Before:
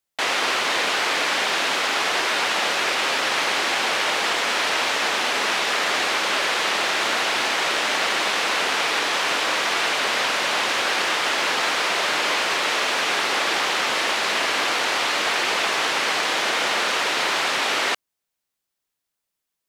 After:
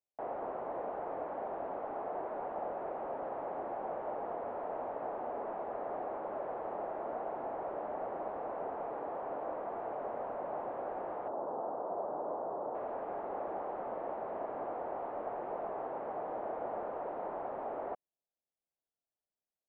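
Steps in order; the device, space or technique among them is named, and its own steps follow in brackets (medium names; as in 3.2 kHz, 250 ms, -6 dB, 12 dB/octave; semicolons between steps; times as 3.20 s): 11.28–12.75 s: low-pass 1.2 kHz 24 dB/octave; overdriven synthesiser ladder filter (saturation -17.5 dBFS, distortion -16 dB; four-pole ladder low-pass 830 Hz, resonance 45%); trim -3 dB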